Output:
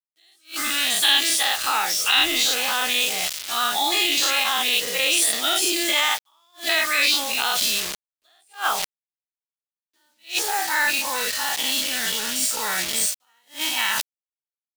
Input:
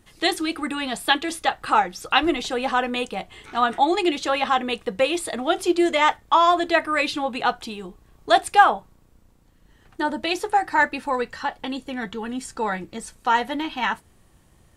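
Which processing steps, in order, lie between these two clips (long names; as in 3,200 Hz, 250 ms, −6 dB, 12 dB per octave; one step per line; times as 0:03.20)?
every bin's largest magnitude spread in time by 120 ms
steady tone 620 Hz −36 dBFS
bit reduction 5 bits
reversed playback
upward compression, threshold −16 dBFS
reversed playback
parametric band 3,600 Hz +11.5 dB 2.8 octaves
in parallel at +3 dB: brickwall limiter −2 dBFS, peak gain reduction 11 dB
on the sum: first-order pre-emphasis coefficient 0.8
level that may rise only so fast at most 240 dB per second
level −8.5 dB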